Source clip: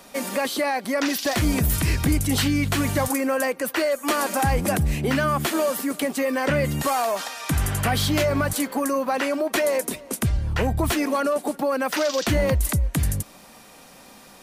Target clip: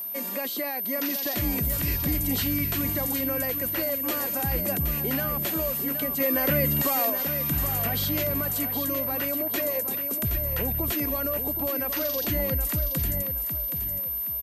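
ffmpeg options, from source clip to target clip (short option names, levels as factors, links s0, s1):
-filter_complex "[0:a]acrossover=split=740|1500[s0][s1][s2];[s1]acompressor=threshold=0.00891:ratio=6[s3];[s0][s3][s2]amix=inputs=3:normalize=0,aeval=exprs='val(0)+0.0631*sin(2*PI*13000*n/s)':c=same,asettb=1/sr,asplit=3[s4][s5][s6];[s4]atrim=end=6.204[s7];[s5]atrim=start=6.2:end=7.1,asetpts=PTS-STARTPTS,afade=t=in:d=0.004:c=qsin,afade=t=out:st=0.896:d=0.004:c=qsin,acontrast=21[s8];[s6]atrim=start=7.096[s9];[s7][s8]acrossfade=d=0.004:c1=hsin:c2=qsin[s10];[s10][s9]acrossfade=d=0.004:c1=qsin:c2=hsin,aecho=1:1:771|1542|2313|3084:0.376|0.117|0.0361|0.0112,volume=0.447"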